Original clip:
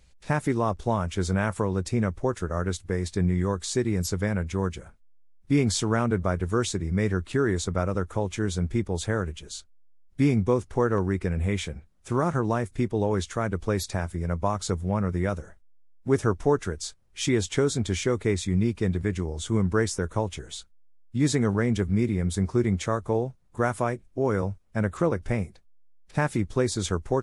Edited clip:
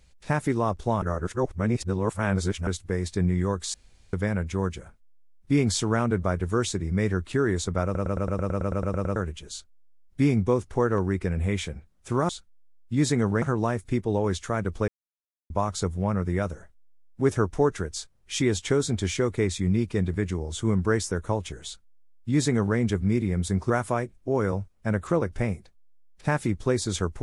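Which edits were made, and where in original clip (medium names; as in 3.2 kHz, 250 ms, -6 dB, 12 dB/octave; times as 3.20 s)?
1.02–2.67 s: reverse
3.74–4.13 s: room tone
7.84 s: stutter in place 0.11 s, 12 plays
13.75–14.37 s: mute
20.52–21.65 s: copy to 12.29 s
22.57–23.60 s: delete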